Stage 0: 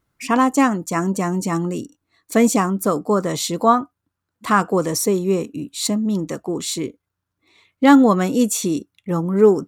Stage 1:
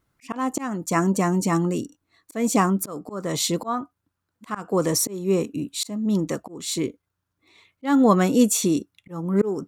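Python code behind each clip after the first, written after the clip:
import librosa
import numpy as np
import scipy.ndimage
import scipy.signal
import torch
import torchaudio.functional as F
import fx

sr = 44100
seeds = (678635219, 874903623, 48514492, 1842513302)

y = fx.auto_swell(x, sr, attack_ms=316.0)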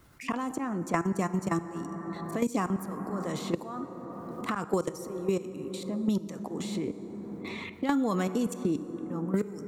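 y = fx.level_steps(x, sr, step_db=21)
y = fx.rev_plate(y, sr, seeds[0], rt60_s=2.4, hf_ratio=0.4, predelay_ms=0, drr_db=12.0)
y = fx.band_squash(y, sr, depth_pct=100)
y = F.gain(torch.from_numpy(y), -4.5).numpy()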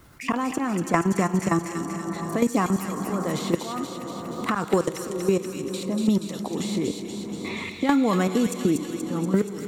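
y = fx.echo_wet_highpass(x, sr, ms=239, feedback_pct=69, hz=2500.0, wet_db=-3.0)
y = F.gain(torch.from_numpy(y), 6.5).numpy()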